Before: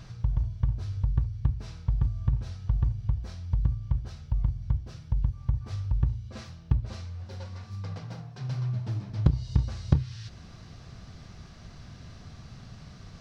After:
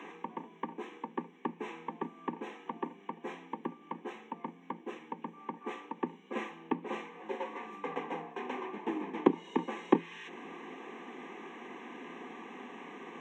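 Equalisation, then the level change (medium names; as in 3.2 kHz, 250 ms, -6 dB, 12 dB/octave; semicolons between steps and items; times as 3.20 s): boxcar filter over 9 samples; Chebyshev high-pass 170 Hz, order 10; static phaser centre 930 Hz, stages 8; +14.5 dB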